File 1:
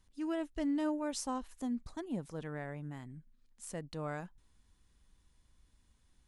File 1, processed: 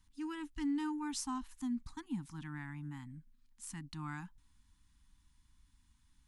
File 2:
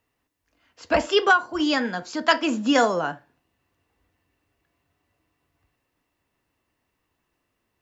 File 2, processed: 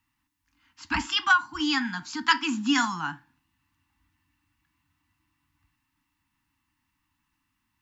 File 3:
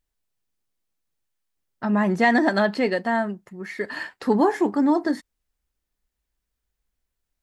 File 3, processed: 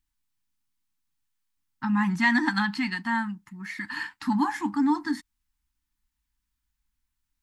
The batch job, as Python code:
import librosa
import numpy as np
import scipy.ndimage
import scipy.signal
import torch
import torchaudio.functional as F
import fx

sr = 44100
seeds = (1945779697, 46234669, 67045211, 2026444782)

y = fx.dynamic_eq(x, sr, hz=410.0, q=0.8, threshold_db=-33.0, ratio=4.0, max_db=-4)
y = scipy.signal.sosfilt(scipy.signal.ellip(3, 1.0, 40, [300.0, 860.0], 'bandstop', fs=sr, output='sos'), y)